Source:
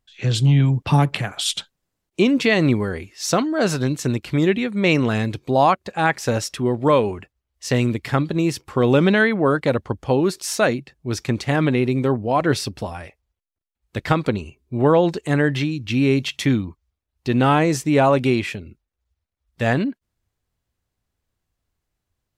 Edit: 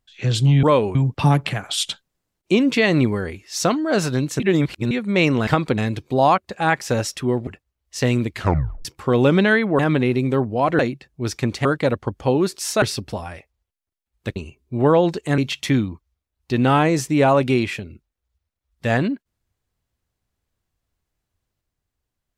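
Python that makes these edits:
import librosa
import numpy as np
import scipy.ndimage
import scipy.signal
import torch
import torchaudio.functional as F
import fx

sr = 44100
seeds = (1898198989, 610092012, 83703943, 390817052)

y = fx.edit(x, sr, fx.reverse_span(start_s=4.08, length_s=0.51),
    fx.move(start_s=6.84, length_s=0.32, to_s=0.63),
    fx.tape_stop(start_s=8.02, length_s=0.52),
    fx.swap(start_s=9.48, length_s=1.17, other_s=11.51, other_length_s=1.0),
    fx.move(start_s=14.05, length_s=0.31, to_s=5.15),
    fx.cut(start_s=15.38, length_s=0.76), tone=tone)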